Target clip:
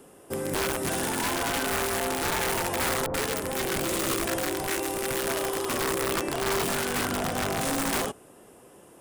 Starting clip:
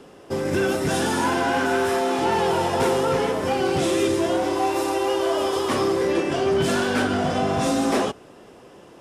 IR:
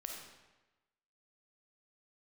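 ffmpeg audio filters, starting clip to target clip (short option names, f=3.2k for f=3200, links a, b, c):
-filter_complex "[0:a]acrossover=split=5900[a][b];[b]acompressor=threshold=-46dB:ratio=4:attack=1:release=60[c];[a][c]amix=inputs=2:normalize=0,highshelf=f=7.1k:t=q:w=1.5:g=13,aeval=exprs='(mod(5.96*val(0)+1,2)-1)/5.96':c=same,asettb=1/sr,asplit=3[d][e][f];[d]atrim=end=3.064[g];[e]atrim=start=3.06:end=5.27,asetpts=PTS-STARTPTS,afade=t=in:d=0.004:c=qsin,afade=t=out:st=2.206:d=0.004:c=qsin,acrossover=split=910[h][i];[i]adelay=80[j];[h][j]amix=inputs=2:normalize=0,atrim=end_sample=97461[k];[f]atrim=start=5.266[l];[g][k]acrossfade=d=0.004:c1=hsin:c2=qsin[m];[m][l]acrossfade=d=0.004:c1=qsin:c2=hsin,volume=-6dB"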